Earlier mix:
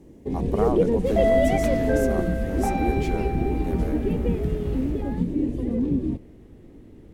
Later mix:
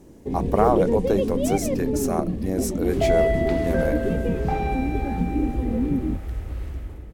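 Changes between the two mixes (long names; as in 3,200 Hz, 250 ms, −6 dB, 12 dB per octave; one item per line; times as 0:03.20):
speech +8.5 dB
second sound: entry +1.85 s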